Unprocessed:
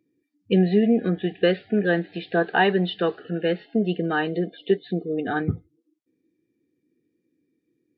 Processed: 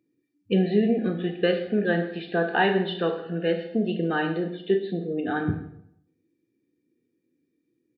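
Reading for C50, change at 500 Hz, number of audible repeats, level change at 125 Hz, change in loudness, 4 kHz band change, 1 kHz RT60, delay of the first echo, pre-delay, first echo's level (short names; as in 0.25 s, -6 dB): 8.5 dB, -1.5 dB, 1, -2.5 dB, -2.0 dB, -2.0 dB, 0.70 s, 0.131 s, 20 ms, -18.5 dB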